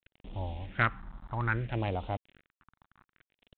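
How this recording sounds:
a quantiser's noise floor 8 bits, dither none
phaser sweep stages 4, 0.62 Hz, lowest notch 440–1,600 Hz
G.726

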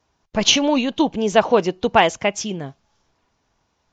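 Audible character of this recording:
Ogg Vorbis

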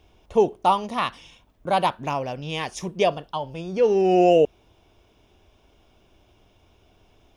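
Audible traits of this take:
background noise floor −60 dBFS
spectral slope −4.5 dB per octave

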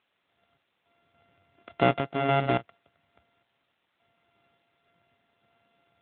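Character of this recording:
a buzz of ramps at a fixed pitch in blocks of 64 samples
sample-and-hold tremolo, depth 90%
a quantiser's noise floor 12 bits, dither triangular
AMR narrowband

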